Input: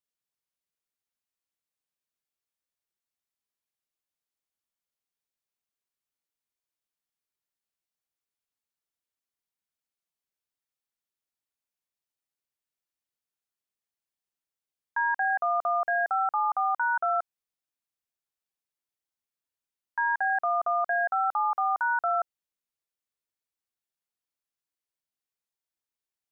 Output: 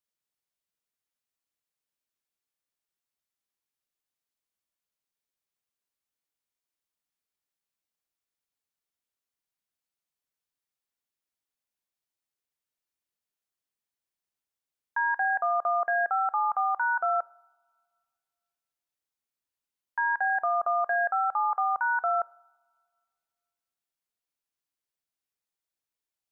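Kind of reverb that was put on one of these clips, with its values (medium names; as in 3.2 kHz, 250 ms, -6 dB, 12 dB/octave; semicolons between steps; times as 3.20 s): two-slope reverb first 0.48 s, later 1.9 s, from -18 dB, DRR 18.5 dB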